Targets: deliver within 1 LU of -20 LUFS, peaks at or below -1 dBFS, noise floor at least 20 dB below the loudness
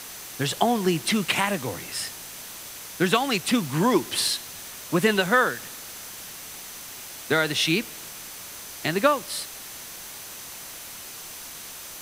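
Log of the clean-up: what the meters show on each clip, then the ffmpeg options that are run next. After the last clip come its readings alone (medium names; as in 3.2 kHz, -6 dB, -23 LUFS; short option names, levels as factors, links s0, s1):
steady tone 6.1 kHz; tone level -49 dBFS; noise floor -40 dBFS; noise floor target -44 dBFS; loudness -24.0 LUFS; peak level -4.0 dBFS; loudness target -20.0 LUFS
-> -af "bandreject=f=6100:w=30"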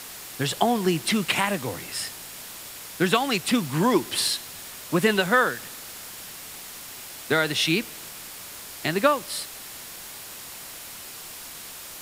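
steady tone not found; noise floor -40 dBFS; noise floor target -44 dBFS
-> -af "afftdn=nr=6:nf=-40"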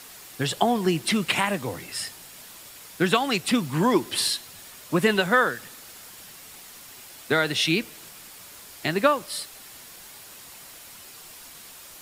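noise floor -45 dBFS; loudness -24.0 LUFS; peak level -4.0 dBFS; loudness target -20.0 LUFS
-> -af "volume=1.58,alimiter=limit=0.891:level=0:latency=1"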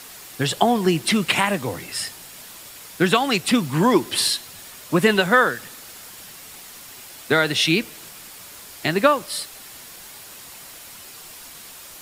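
loudness -20.0 LUFS; peak level -1.0 dBFS; noise floor -41 dBFS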